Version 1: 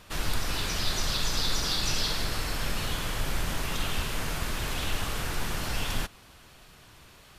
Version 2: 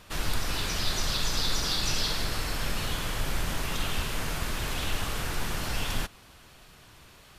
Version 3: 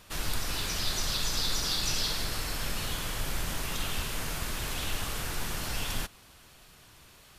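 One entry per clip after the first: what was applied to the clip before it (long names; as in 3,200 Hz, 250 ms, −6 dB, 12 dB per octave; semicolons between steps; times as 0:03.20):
no processing that can be heard
high-shelf EQ 5,000 Hz +6 dB; level −3.5 dB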